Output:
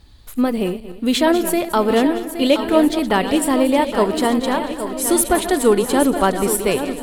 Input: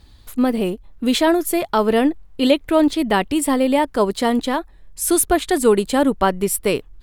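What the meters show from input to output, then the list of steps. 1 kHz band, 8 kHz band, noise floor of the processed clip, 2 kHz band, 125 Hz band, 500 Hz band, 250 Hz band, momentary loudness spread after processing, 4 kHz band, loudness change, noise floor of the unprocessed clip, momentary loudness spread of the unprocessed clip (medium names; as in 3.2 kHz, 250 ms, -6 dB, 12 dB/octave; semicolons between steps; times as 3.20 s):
+1.0 dB, +1.0 dB, -37 dBFS, +1.0 dB, no reading, +1.0 dB, +1.0 dB, 6 LU, +1.0 dB, +1.0 dB, -47 dBFS, 7 LU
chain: backward echo that repeats 115 ms, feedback 53%, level -11.5 dB; shuffle delay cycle 1367 ms, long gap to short 1.5:1, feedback 40%, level -10 dB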